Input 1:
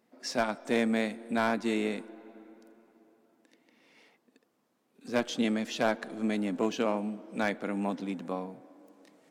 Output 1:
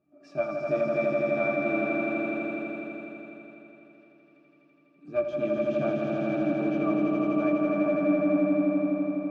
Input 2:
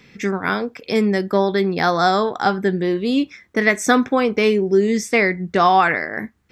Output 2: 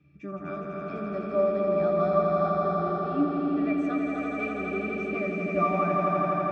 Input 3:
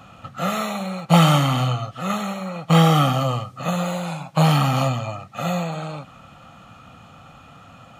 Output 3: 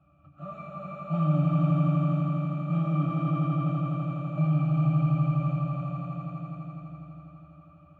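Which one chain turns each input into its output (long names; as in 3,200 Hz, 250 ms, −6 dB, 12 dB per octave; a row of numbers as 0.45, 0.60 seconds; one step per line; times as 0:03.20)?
resonances in every octave D, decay 0.16 s
echo that builds up and dies away 83 ms, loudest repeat 5, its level −4 dB
loudness normalisation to −27 LKFS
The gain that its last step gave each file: +12.0, −0.5, −6.0 decibels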